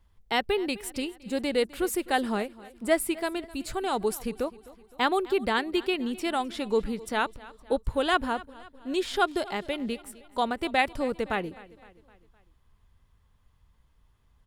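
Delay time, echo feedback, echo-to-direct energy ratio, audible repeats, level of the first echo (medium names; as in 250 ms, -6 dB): 257 ms, 51%, -18.5 dB, 3, -20.0 dB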